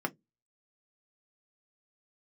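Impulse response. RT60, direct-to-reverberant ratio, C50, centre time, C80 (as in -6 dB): 0.15 s, 3.5 dB, 28.0 dB, 4 ms, 37.5 dB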